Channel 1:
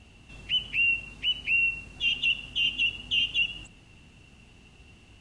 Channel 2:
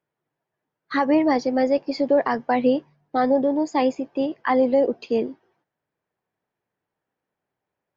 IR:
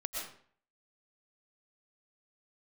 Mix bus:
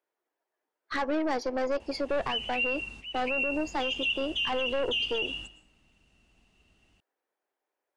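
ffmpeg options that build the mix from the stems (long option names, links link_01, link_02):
-filter_complex "[0:a]equalizer=frequency=120:width_type=o:width=0.59:gain=-7,adelay=1800,volume=-2dB,asplit=2[link_01][link_02];[link_02]volume=-11dB[link_03];[1:a]highpass=frequency=320:width=0.5412,highpass=frequency=320:width=1.3066,aeval=exprs='(tanh(11.2*val(0)+0.5)-tanh(0.5))/11.2':channel_layout=same,volume=-0.5dB,asplit=2[link_04][link_05];[link_05]apad=whole_len=308760[link_06];[link_01][link_06]sidechaingate=range=-33dB:threshold=-56dB:ratio=16:detection=peak[link_07];[2:a]atrim=start_sample=2205[link_08];[link_03][link_08]afir=irnorm=-1:irlink=0[link_09];[link_07][link_04][link_09]amix=inputs=3:normalize=0,alimiter=limit=-21.5dB:level=0:latency=1:release=63"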